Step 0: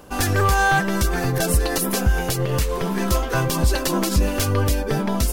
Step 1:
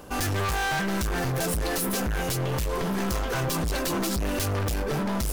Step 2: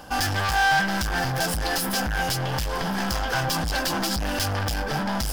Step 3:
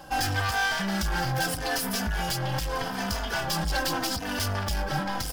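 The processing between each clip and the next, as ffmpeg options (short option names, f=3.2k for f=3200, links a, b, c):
-af "asoftclip=type=hard:threshold=-25dB"
-af "equalizer=f=400:t=o:w=0.33:g=-9,equalizer=f=800:t=o:w=0.33:g=9,equalizer=f=1.6k:t=o:w=0.33:g=8,equalizer=f=3.15k:t=o:w=0.33:g=6,equalizer=f=5k:t=o:w=0.33:g=10"
-filter_complex "[0:a]asplit=2[a][b];[b]adelay=3.2,afreqshift=-0.81[c];[a][c]amix=inputs=2:normalize=1"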